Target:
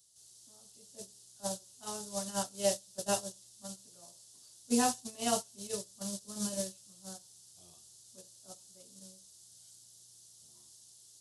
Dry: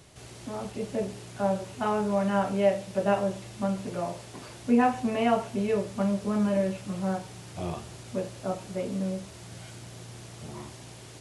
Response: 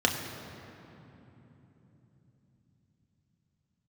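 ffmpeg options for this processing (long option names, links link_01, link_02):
-af "aexciter=amount=12.3:drive=7.8:freq=3600,agate=range=-24dB:threshold=-21dB:ratio=16:detection=peak,volume=-7.5dB"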